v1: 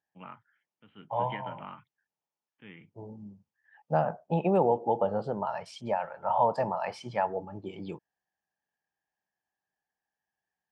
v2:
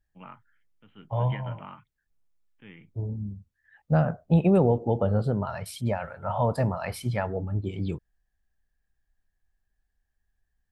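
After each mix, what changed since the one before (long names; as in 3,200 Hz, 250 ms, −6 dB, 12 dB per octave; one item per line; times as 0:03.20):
second voice: remove loudspeaker in its box 240–6,100 Hz, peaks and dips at 260 Hz −7 dB, 410 Hz −3 dB, 870 Hz +8 dB, 1,400 Hz −5 dB, 2,100 Hz −5 dB, 3,900 Hz −10 dB
master: add low-shelf EQ 82 Hz +11 dB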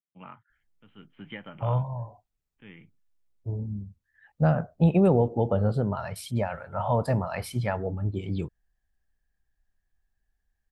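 second voice: entry +0.50 s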